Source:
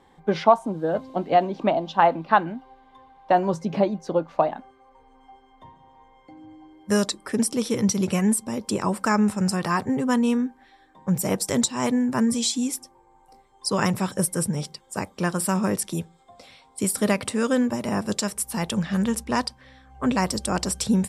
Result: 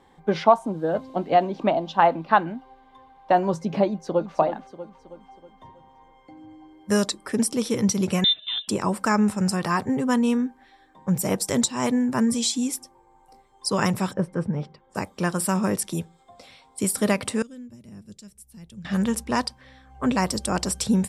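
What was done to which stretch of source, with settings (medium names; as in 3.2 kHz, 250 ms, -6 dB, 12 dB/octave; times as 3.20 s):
3.87–4.35 s: echo throw 320 ms, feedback 50%, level -9 dB
8.24–8.68 s: frequency inversion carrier 3.8 kHz
14.13–14.95 s: low-pass 1.8 kHz
17.42–18.85 s: amplifier tone stack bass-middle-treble 10-0-1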